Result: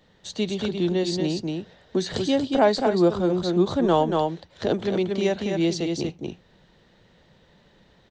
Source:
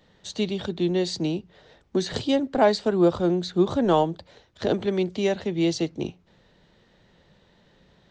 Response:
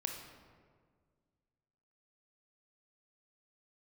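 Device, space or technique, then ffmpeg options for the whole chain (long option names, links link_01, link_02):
ducked delay: -filter_complex "[0:a]asplit=3[link_01][link_02][link_03];[link_02]adelay=233,volume=-3dB[link_04];[link_03]apad=whole_len=367626[link_05];[link_04][link_05]sidechaincompress=threshold=-24dB:ratio=8:attack=5.9:release=146[link_06];[link_01][link_06]amix=inputs=2:normalize=0"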